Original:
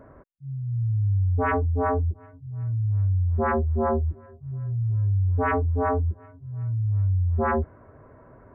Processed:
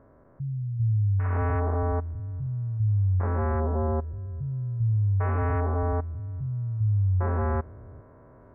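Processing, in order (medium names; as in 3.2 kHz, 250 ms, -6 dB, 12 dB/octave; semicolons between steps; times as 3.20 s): spectrogram pixelated in time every 400 ms; tape noise reduction on one side only decoder only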